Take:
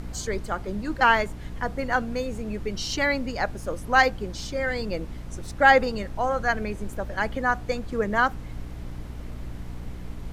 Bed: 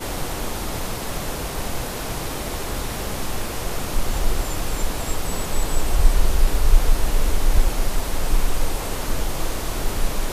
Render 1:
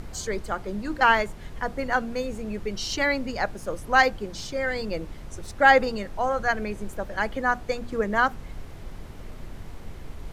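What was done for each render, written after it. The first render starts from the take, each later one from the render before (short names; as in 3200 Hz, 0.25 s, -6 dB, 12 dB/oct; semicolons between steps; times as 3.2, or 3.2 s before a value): notches 60/120/180/240/300 Hz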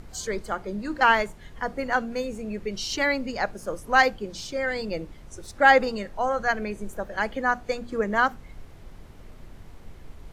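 noise print and reduce 6 dB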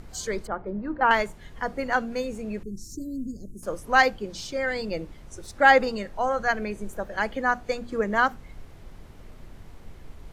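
0.47–1.11 LPF 1300 Hz; 2.63–3.63 inverse Chebyshev band-stop 850–3100 Hz, stop band 60 dB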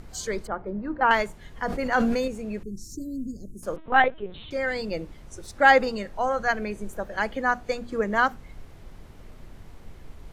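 1.66–2.28 sustainer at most 21 dB/s; 3.76–4.51 LPC vocoder at 8 kHz pitch kept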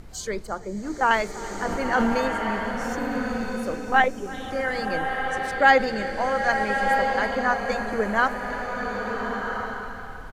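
echo 0.331 s -20.5 dB; bloom reverb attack 1.38 s, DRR 2.5 dB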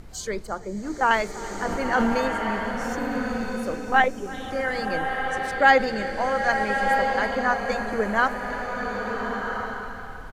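nothing audible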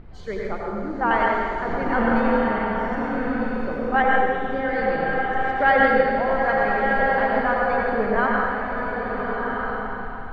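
air absorption 380 m; plate-style reverb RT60 1.7 s, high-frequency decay 0.85×, pre-delay 75 ms, DRR -2.5 dB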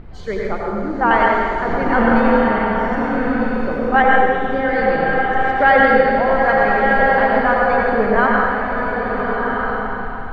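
gain +6 dB; limiter -2 dBFS, peak gain reduction 2.5 dB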